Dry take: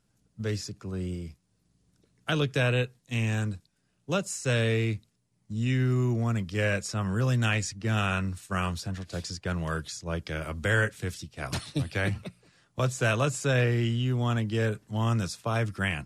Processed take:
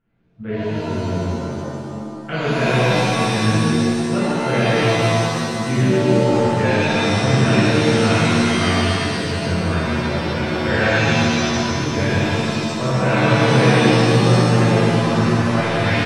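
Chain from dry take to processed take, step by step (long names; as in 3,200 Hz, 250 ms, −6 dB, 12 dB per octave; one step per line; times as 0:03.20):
inverse Chebyshev low-pass filter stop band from 5,100 Hz, stop band 40 dB
single-tap delay 152 ms −5 dB
reverb with rising layers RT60 2.2 s, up +7 semitones, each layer −2 dB, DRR −10.5 dB
level −3 dB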